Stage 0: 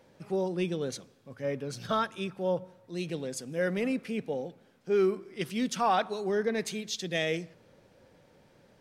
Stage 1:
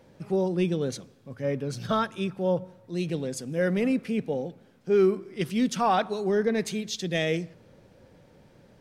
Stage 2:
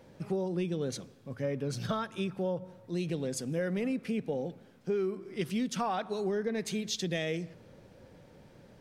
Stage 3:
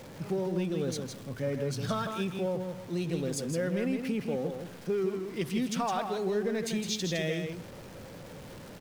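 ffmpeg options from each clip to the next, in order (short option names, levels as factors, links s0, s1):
-af "lowshelf=f=320:g=7,volume=1.19"
-af "acompressor=threshold=0.0355:ratio=6"
-af "aeval=exprs='val(0)+0.5*0.00631*sgn(val(0))':c=same,aecho=1:1:161:0.501"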